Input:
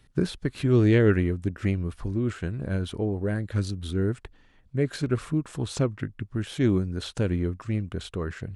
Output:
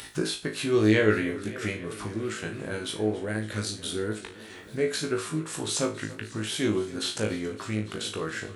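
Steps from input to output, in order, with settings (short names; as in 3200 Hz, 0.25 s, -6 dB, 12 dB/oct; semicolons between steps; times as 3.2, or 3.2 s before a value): HPF 540 Hz 6 dB/oct; high shelf 4500 Hz +8 dB; upward compressor, threshold -31 dBFS; flutter echo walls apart 3.2 m, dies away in 0.3 s; warbling echo 0.28 s, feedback 79%, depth 86 cents, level -18.5 dB; gain +1 dB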